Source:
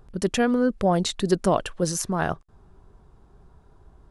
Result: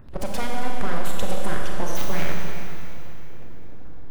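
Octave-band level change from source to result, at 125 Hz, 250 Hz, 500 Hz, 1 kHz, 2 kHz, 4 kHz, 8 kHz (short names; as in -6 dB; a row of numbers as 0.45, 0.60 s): -2.5, -9.0, -7.5, -3.0, 0.0, -3.5, -6.5 dB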